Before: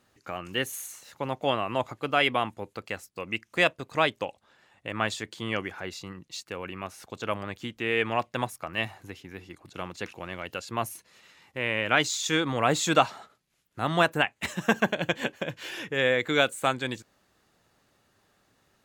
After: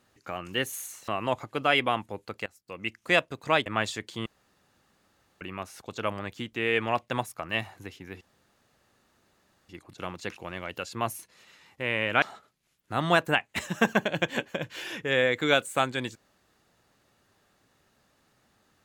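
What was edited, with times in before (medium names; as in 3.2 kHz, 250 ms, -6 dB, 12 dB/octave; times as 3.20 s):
1.08–1.56 s: delete
2.94–3.43 s: fade in, from -20.5 dB
4.14–4.90 s: delete
5.50–6.65 s: room tone
9.45 s: insert room tone 1.48 s
11.98–13.09 s: delete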